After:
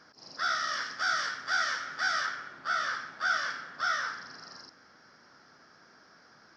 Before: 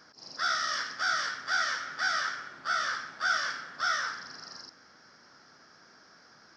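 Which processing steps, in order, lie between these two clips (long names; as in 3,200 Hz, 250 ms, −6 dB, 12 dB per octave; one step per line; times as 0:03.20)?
high-shelf EQ 7,000 Hz −9.5 dB, from 0:00.82 −3 dB, from 0:02.26 −11 dB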